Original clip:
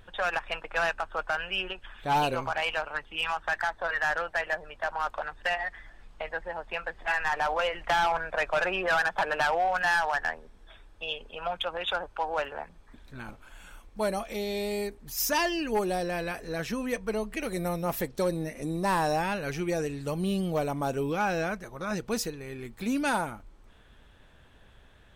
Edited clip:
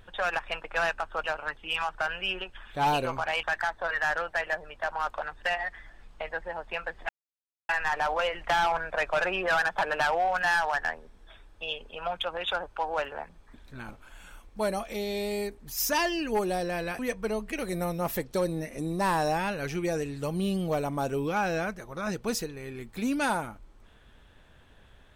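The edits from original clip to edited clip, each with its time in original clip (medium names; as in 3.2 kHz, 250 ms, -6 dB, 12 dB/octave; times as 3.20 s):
2.72–3.43 s: move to 1.24 s
7.09 s: insert silence 0.60 s
16.39–16.83 s: delete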